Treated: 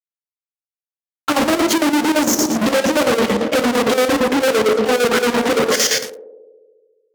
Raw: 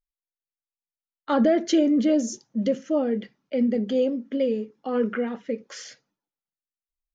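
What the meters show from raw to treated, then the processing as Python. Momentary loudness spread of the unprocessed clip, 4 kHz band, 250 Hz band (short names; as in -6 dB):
13 LU, +18.5 dB, +5.0 dB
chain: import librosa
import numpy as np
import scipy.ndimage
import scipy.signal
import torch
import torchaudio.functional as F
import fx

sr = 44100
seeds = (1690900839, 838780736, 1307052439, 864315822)

p1 = fx.rev_double_slope(x, sr, seeds[0], early_s=0.42, late_s=1.8, knee_db=-25, drr_db=-9.5)
p2 = fx.dynamic_eq(p1, sr, hz=380.0, q=1.2, threshold_db=-34.0, ratio=4.0, max_db=7)
p3 = fx.rider(p2, sr, range_db=3, speed_s=0.5)
p4 = p2 + (p3 * 10.0 ** (-3.0 / 20.0))
p5 = fx.fuzz(p4, sr, gain_db=35.0, gate_db=-40.0)
p6 = fx.chopper(p5, sr, hz=8.8, depth_pct=65, duty_pct=65)
p7 = fx.highpass(p6, sr, hz=160.0, slope=6)
y = fx.echo_banded(p7, sr, ms=70, feedback_pct=78, hz=430.0, wet_db=-11.0)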